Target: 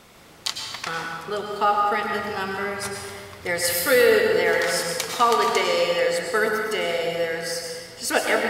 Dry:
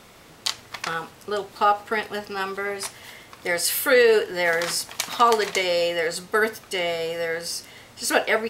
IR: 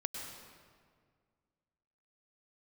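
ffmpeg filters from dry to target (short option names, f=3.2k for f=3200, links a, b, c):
-filter_complex "[0:a]asettb=1/sr,asplit=3[a][b][c];[a]atrim=end=2.124[d];[b]atrim=start=2.12:end=4.37,asetpts=PTS-STARTPTS,afade=t=in:d=0.004:c=qsin,afade=t=out:st=2.246:d=0.004:c=qsin,equalizer=f=99:w=1.5:g=11.5[e];[c]atrim=start=4.366[f];[d][e]acrossfade=d=0.004:c1=hsin:c2=qsin[g];[g][f]acrossfade=d=0.004:c1=qsin:c2=hsin[h];[1:a]atrim=start_sample=2205[i];[h][i]afir=irnorm=-1:irlink=0"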